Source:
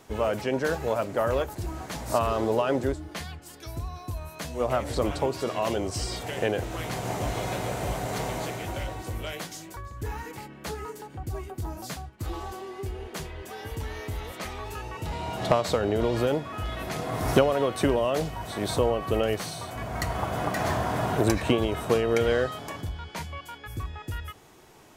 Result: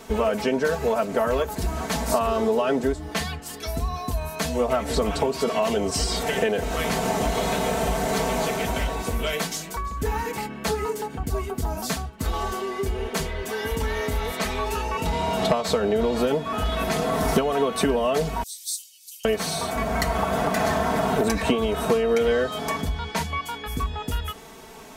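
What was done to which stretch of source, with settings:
0:18.43–0:19.25: inverse Chebyshev high-pass filter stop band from 1,200 Hz, stop band 70 dB
whole clip: comb filter 4.5 ms, depth 80%; downward compressor 3 to 1, threshold −29 dBFS; level +8 dB

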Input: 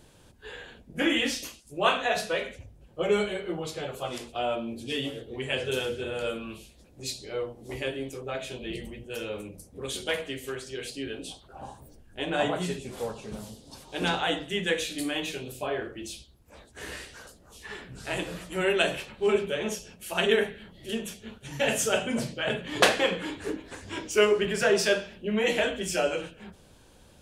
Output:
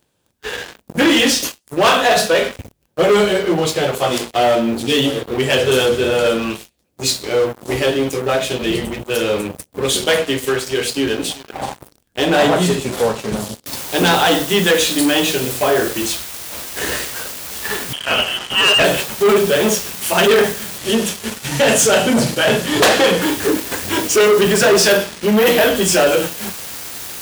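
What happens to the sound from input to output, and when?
0:10.83–0:11.42: delay throw 380 ms, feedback 15%, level −15 dB
0:13.66: noise floor change −68 dB −45 dB
0:17.93–0:18.84: voice inversion scrambler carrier 3,200 Hz
0:20.78–0:23.22: low-pass filter 11,000 Hz
0:24.90–0:25.76: bad sample-rate conversion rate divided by 3×, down filtered, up hold
whole clip: dynamic equaliser 2,300 Hz, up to −5 dB, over −45 dBFS, Q 2.2; leveller curve on the samples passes 5; high-pass filter 110 Hz 6 dB per octave

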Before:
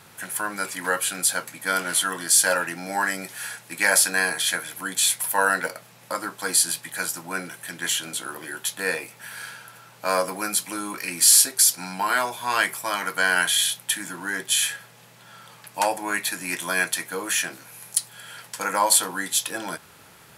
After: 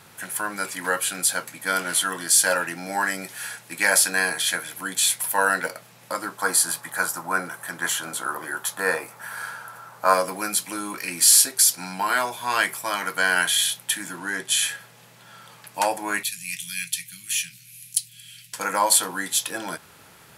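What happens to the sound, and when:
0:06.37–0:10.14: drawn EQ curve 330 Hz 0 dB, 1,200 Hz +10 dB, 2,600 Hz −5 dB, 12,000 Hz +1 dB
0:14.19–0:14.68: low-pass filter 12,000 Hz 24 dB per octave
0:16.23–0:18.53: elliptic band-stop filter 150–2,500 Hz, stop band 70 dB

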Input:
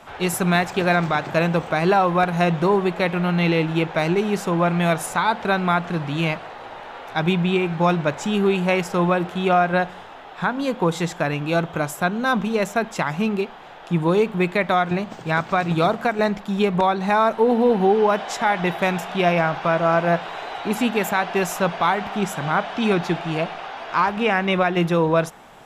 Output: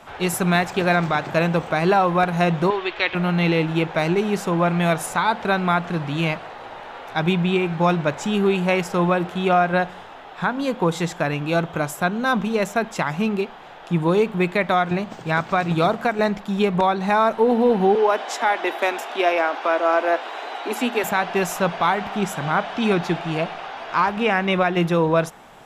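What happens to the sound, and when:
0:02.70–0:03.15: drawn EQ curve 110 Hz 0 dB, 170 Hz −27 dB, 300 Hz −5 dB, 570 Hz −7 dB, 3,300 Hz +8 dB, 6,000 Hz −2 dB, 12,000 Hz −25 dB
0:17.95–0:21.04: Butterworth high-pass 240 Hz 72 dB per octave

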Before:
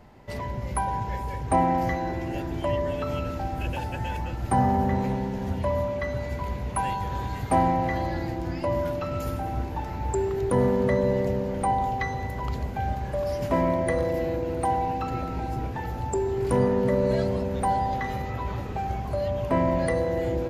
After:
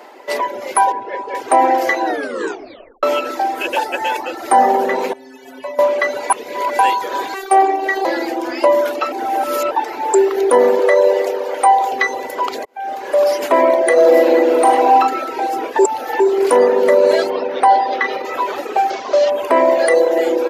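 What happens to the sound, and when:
0:00.92–0:01.35: head-to-tape spacing loss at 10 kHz 25 dB
0:02.05: tape stop 0.98 s
0:05.13–0:05.79: stiff-string resonator 130 Hz, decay 0.29 s, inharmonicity 0.008
0:06.30–0:06.79: reverse
0:07.34–0:08.05: phases set to zero 388 Hz
0:09.12–0:09.71: reverse
0:10.79–0:11.92: high-pass filter 340 Hz 24 dB per octave
0:12.65–0:13.23: fade in
0:13.93–0:14.94: thrown reverb, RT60 1.2 s, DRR −2.5 dB
0:15.79–0:16.20: reverse
0:17.30–0:18.25: Savitzky-Golay smoothing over 15 samples
0:18.90–0:19.30: variable-slope delta modulation 32 kbit/s
whole clip: reverb reduction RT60 0.9 s; inverse Chebyshev high-pass filter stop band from 170 Hz, stop band 40 dB; boost into a limiter +18.5 dB; level −1.5 dB

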